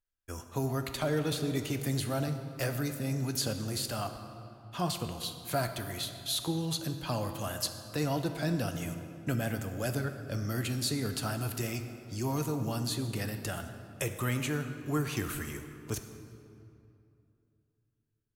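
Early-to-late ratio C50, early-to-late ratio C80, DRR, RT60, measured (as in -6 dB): 8.0 dB, 9.0 dB, 7.0 dB, 2.7 s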